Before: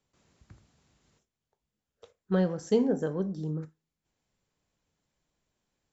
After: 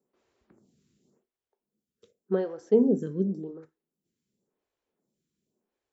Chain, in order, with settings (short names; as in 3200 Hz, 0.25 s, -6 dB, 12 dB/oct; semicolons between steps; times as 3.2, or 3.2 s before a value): tilt +1.5 dB/oct; small resonant body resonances 220/360 Hz, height 17 dB, ringing for 25 ms; photocell phaser 0.9 Hz; gain -7.5 dB